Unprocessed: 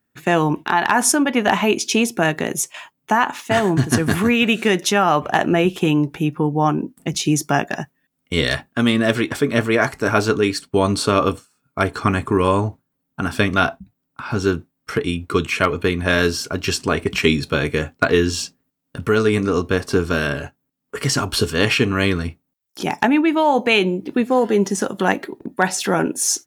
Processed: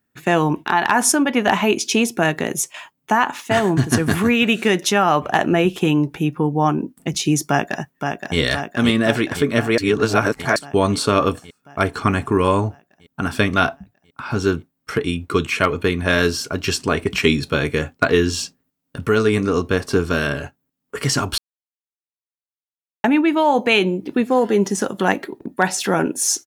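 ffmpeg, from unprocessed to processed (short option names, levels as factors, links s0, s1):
-filter_complex "[0:a]asplit=2[s0][s1];[s1]afade=t=in:st=7.48:d=0.01,afade=t=out:st=8.38:d=0.01,aecho=0:1:520|1040|1560|2080|2600|3120|3640|4160|4680|5200|5720|6240:0.530884|0.371619|0.260133|0.182093|0.127465|0.0892257|0.062458|0.0437206|0.0306044|0.0214231|0.0149962|0.0104973[s2];[s0][s2]amix=inputs=2:normalize=0,asplit=5[s3][s4][s5][s6][s7];[s3]atrim=end=9.782[s8];[s4]atrim=start=9.778:end=10.562,asetpts=PTS-STARTPTS,areverse[s9];[s5]atrim=start=10.558:end=21.38,asetpts=PTS-STARTPTS,afade=t=out:st=10.818:d=0.004:c=hsin[s10];[s6]atrim=start=21.38:end=23.04,asetpts=PTS-STARTPTS,volume=0[s11];[s7]atrim=start=23.04,asetpts=PTS-STARTPTS,afade=t=in:d=0.004:c=hsin[s12];[s8][s9]acrossfade=d=0.004:c1=hsin:c2=hsin[s13];[s10][s11][s12]concat=n=3:v=0:a=1[s14];[s13][s14]acrossfade=d=0.004:c1=hsin:c2=hsin"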